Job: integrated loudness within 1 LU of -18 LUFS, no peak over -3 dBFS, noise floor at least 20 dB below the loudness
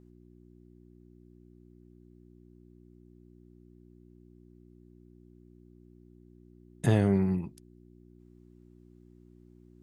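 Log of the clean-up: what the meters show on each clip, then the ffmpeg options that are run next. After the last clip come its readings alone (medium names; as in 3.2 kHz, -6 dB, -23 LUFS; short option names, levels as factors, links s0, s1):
hum 60 Hz; highest harmonic 360 Hz; hum level -55 dBFS; loudness -28.0 LUFS; peak level -11.5 dBFS; loudness target -18.0 LUFS
-> -af "bandreject=f=60:t=h:w=4,bandreject=f=120:t=h:w=4,bandreject=f=180:t=h:w=4,bandreject=f=240:t=h:w=4,bandreject=f=300:t=h:w=4,bandreject=f=360:t=h:w=4"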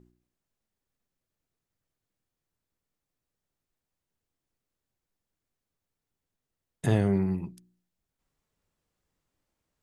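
hum not found; loudness -28.0 LUFS; peak level -11.0 dBFS; loudness target -18.0 LUFS
-> -af "volume=3.16,alimiter=limit=0.708:level=0:latency=1"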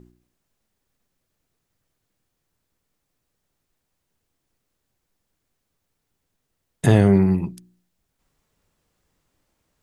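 loudness -18.0 LUFS; peak level -3.0 dBFS; noise floor -77 dBFS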